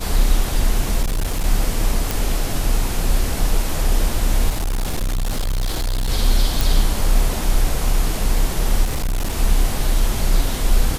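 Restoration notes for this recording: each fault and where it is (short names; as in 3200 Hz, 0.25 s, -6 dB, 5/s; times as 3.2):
1.02–1.45 clipped -16.5 dBFS
2.11 pop
4.49–6.1 clipped -17.5 dBFS
6.61 pop
8.84–9.38 clipped -17 dBFS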